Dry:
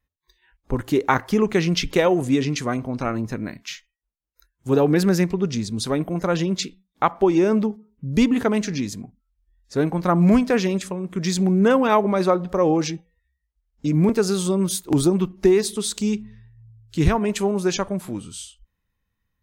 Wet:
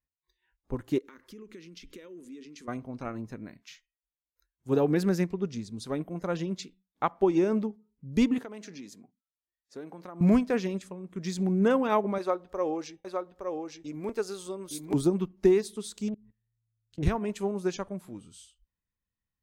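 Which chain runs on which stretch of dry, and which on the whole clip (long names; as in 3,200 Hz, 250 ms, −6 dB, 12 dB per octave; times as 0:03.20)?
0:00.98–0:02.68: downward compressor 8 to 1, threshold −27 dBFS + phaser with its sweep stopped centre 310 Hz, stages 4
0:08.38–0:10.21: high-pass filter 260 Hz + downward compressor 4 to 1, threshold −25 dBFS
0:12.18–0:14.94: parametric band 170 Hz −14 dB 1.1 octaves + single-tap delay 865 ms −3 dB
0:16.08–0:17.03: treble cut that deepens with the level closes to 790 Hz, closed at −22.5 dBFS + output level in coarse steps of 22 dB + highs frequency-modulated by the lows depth 0.29 ms
whole clip: parametric band 310 Hz +2.5 dB 2.9 octaves; expander for the loud parts 1.5 to 1, over −27 dBFS; level −7 dB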